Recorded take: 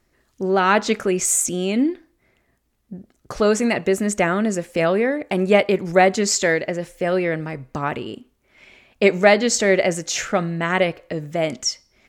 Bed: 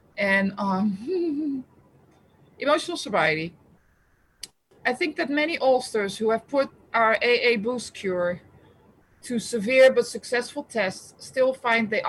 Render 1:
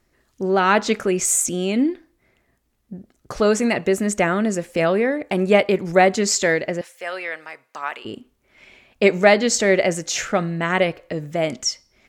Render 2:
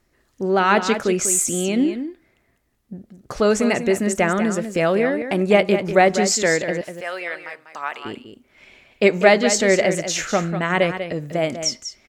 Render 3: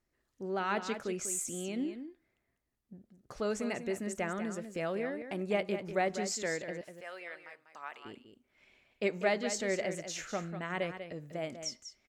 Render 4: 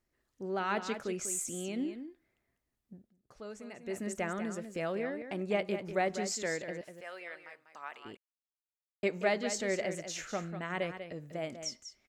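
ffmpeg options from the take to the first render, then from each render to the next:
-filter_complex "[0:a]asettb=1/sr,asplit=3[s0][s1][s2];[s0]atrim=end=6.814[s3];[s1]atrim=start=6.81:end=8.05,asetpts=PTS-STARTPTS,afade=t=in:d=0.004:c=qsin,afade=t=out:st=1.236:d=0.004:c=qsin,highpass=940[s4];[s2]atrim=start=8.046[s5];[s3][s4]acrossfade=d=0.004:c1=hsin:c2=qsin[s6];[s6][s5]acrossfade=d=0.004:c1=qsin:c2=hsin"
-af "aecho=1:1:195:0.335"
-af "volume=0.15"
-filter_complex "[0:a]asettb=1/sr,asplit=3[s0][s1][s2];[s0]atrim=end=4.924[s3];[s1]atrim=start=4.92:end=5.62,asetpts=PTS-STARTPTS,afade=t=in:d=0.004:c=qsin,afade=t=out:st=0.696:d=0.004:c=qsin,equalizer=f=11000:w=2.3:g=-7.5[s4];[s2]atrim=start=5.616[s5];[s3][s4]acrossfade=d=0.004:c1=hsin:c2=qsin[s6];[s6][s5]acrossfade=d=0.004:c1=qsin:c2=hsin,asplit=5[s7][s8][s9][s10][s11];[s7]atrim=end=3.13,asetpts=PTS-STARTPTS,afade=t=out:st=2.94:d=0.19:silence=0.266073[s12];[s8]atrim=start=3.13:end=3.8,asetpts=PTS-STARTPTS,volume=0.266[s13];[s9]atrim=start=3.8:end=8.17,asetpts=PTS-STARTPTS,afade=t=in:d=0.19:silence=0.266073,afade=t=out:st=4.366:d=0.004:c=hsin[s14];[s10]atrim=start=8.17:end=9.03,asetpts=PTS-STARTPTS,volume=0[s15];[s11]atrim=start=9.03,asetpts=PTS-STARTPTS,afade=t=in:d=0.004:c=hsin[s16];[s12][s13][s14][s15][s16]concat=n=5:v=0:a=1"

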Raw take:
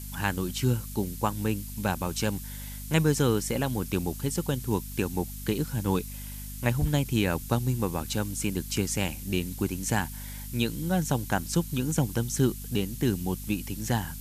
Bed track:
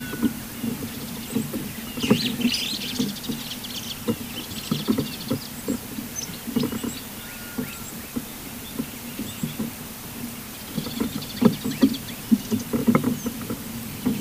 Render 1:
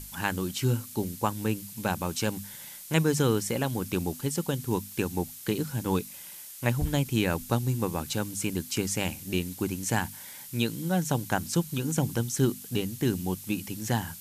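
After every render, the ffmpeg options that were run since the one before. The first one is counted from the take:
-af "bandreject=f=50:t=h:w=6,bandreject=f=100:t=h:w=6,bandreject=f=150:t=h:w=6,bandreject=f=200:t=h:w=6,bandreject=f=250:t=h:w=6"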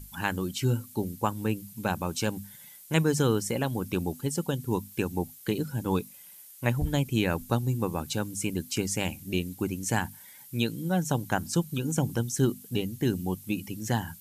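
-af "afftdn=nr=10:nf=-44"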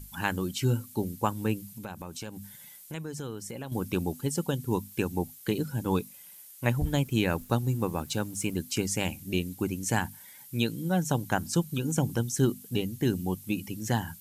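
-filter_complex "[0:a]asettb=1/sr,asplit=3[s0][s1][s2];[s0]atrim=end=1.744[s3];[s1]atrim=start=1.74:end=3.72,asetpts=PTS-STARTPTS,afade=t=in:d=0.004:c=qsin,afade=t=out:st=1.976:d=0.004:c=qsin,acompressor=threshold=0.0126:ratio=3:attack=3.2:release=140:knee=1:detection=peak[s4];[s2]atrim=start=3.716[s5];[s3][s4]acrossfade=d=0.004:c1=hsin:c2=qsin[s6];[s6][s5]acrossfade=d=0.004:c1=qsin:c2=hsin,asettb=1/sr,asplit=3[s7][s8][s9];[s7]atrim=end=6.834[s10];[s8]atrim=start=6.83:end=8.58,asetpts=PTS-STARTPTS,afade=t=in:d=0.004:c=qsin,afade=t=out:st=1.746:d=0.004:c=qsin,aeval=exprs='sgn(val(0))*max(abs(val(0))-0.00158,0)':c=same[s11];[s9]atrim=start=8.576[s12];[s10][s11]acrossfade=d=0.004:c1=hsin:c2=qsin[s13];[s13][s12]acrossfade=d=0.004:c1=qsin:c2=hsin"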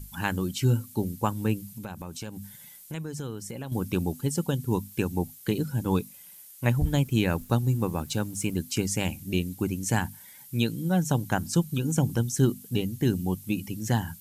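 -af "bass=f=250:g=4,treble=f=4000:g=1"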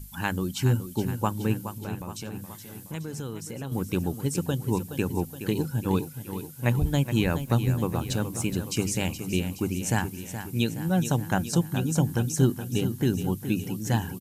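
-af "aecho=1:1:421|842|1263|1684|2105|2526|2947:0.299|0.17|0.097|0.0553|0.0315|0.018|0.0102"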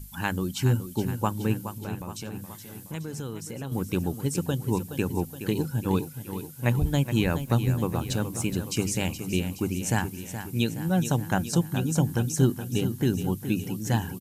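-af anull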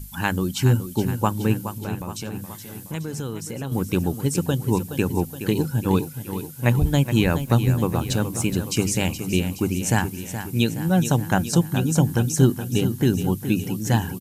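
-af "volume=1.78"

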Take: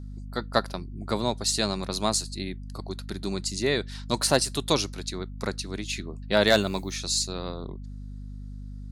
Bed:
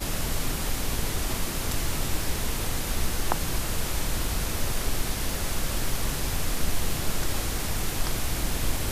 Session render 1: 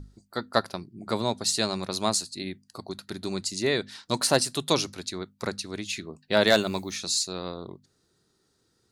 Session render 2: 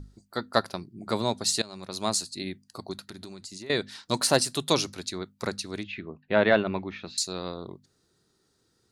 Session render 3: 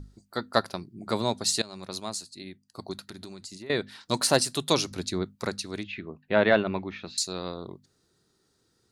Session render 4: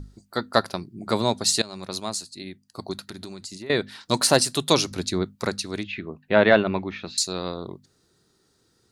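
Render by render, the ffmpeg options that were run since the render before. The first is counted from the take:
-af "bandreject=f=50:t=h:w=6,bandreject=f=100:t=h:w=6,bandreject=f=150:t=h:w=6,bandreject=f=200:t=h:w=6,bandreject=f=250:t=h:w=6"
-filter_complex "[0:a]asettb=1/sr,asplit=3[s0][s1][s2];[s0]atrim=end=3.024[s3];[s1]atrim=start=3.02:end=3.7,asetpts=PTS-STARTPTS,afade=t=in:d=0.004:c=qsin,afade=t=out:st=0.676:d=0.004:c=qsin,acompressor=threshold=0.0141:ratio=20:attack=3.2:release=140:knee=1:detection=peak[s4];[s2]atrim=start=3.696[s5];[s3][s4]acrossfade=d=0.004:c1=hsin:c2=qsin[s6];[s6][s5]acrossfade=d=0.004:c1=qsin:c2=hsin,asettb=1/sr,asplit=3[s7][s8][s9];[s7]atrim=end=5.834[s10];[s8]atrim=start=5.83:end=7.18,asetpts=PTS-STARTPTS,afade=t=in:d=0.004:c=qsin,afade=t=out:st=1.346:d=0.004:c=qsin,lowpass=f=2700:w=0.5412,lowpass=f=2700:w=1.3066[s11];[s9]atrim=start=7.176[s12];[s10][s11]acrossfade=d=0.004:c1=hsin:c2=qsin[s13];[s13][s12]acrossfade=d=0.004:c1=qsin:c2=hsin,asplit=2[s14][s15];[s14]atrim=end=1.62,asetpts=PTS-STARTPTS,afade=t=out:st=1.616:d=0.004:c=hsin:silence=0.0841395[s16];[s15]atrim=start=1.62,asetpts=PTS-STARTPTS,afade=t=in:d=0.61:silence=0.0841395[s17];[s16][s17]concat=n=2:v=0:a=1"
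-filter_complex "[0:a]asettb=1/sr,asplit=3[s0][s1][s2];[s0]atrim=end=3.554[s3];[s1]atrim=start=3.55:end=4.01,asetpts=PTS-STARTPTS,afade=t=in:d=0.004:c=qsin,afade=t=out:st=0.456:d=0.004:c=qsin,equalizer=f=6500:t=o:w=1.2:g=-9.5[s4];[s2]atrim=start=4.006[s5];[s3][s4]acrossfade=d=0.004:c1=hsin:c2=qsin[s6];[s6][s5]acrossfade=d=0.004:c1=qsin:c2=hsin,asettb=1/sr,asplit=3[s7][s8][s9];[s7]atrim=end=4.914[s10];[s8]atrim=start=4.91:end=5.36,asetpts=PTS-STARTPTS,afade=t=in:d=0.004:c=qsin,afade=t=out:st=0.446:d=0.004:c=qsin,lowshelf=f=480:g=8.5[s11];[s9]atrim=start=5.356[s12];[s10][s11]acrossfade=d=0.004:c1=hsin:c2=qsin[s13];[s13][s12]acrossfade=d=0.004:c1=qsin:c2=hsin,asplit=3[s14][s15][s16];[s14]atrim=end=2.002[s17];[s15]atrim=start=1.998:end=2.782,asetpts=PTS-STARTPTS,volume=0.422[s18];[s16]atrim=start=2.778[s19];[s17][s18]acrossfade=d=0.004:c1=hsin:c2=hsin[s20];[s20][s19]acrossfade=d=0.004:c1=hsin:c2=hsin"
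-af "volume=1.68,alimiter=limit=0.794:level=0:latency=1"

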